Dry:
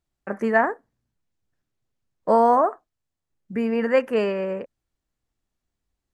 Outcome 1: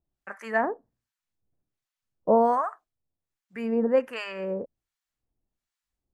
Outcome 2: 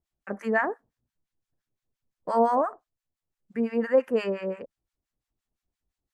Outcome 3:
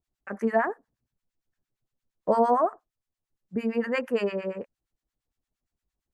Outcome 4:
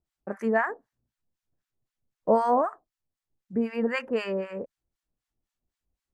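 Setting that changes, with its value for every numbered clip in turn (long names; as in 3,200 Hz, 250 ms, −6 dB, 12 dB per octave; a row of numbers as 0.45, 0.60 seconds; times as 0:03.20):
two-band tremolo in antiphase, speed: 1.3, 5.8, 8.7, 3.9 Hertz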